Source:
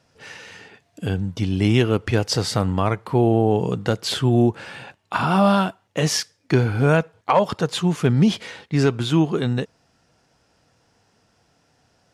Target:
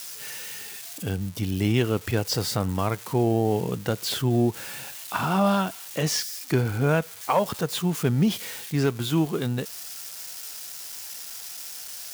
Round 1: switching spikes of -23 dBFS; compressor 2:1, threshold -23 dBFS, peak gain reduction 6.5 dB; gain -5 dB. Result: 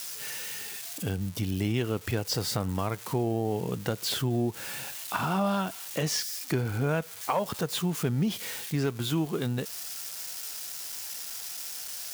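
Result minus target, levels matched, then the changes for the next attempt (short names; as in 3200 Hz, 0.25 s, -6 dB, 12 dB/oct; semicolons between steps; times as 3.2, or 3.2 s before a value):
compressor: peak gain reduction +6.5 dB
remove: compressor 2:1, threshold -23 dBFS, peak gain reduction 6.5 dB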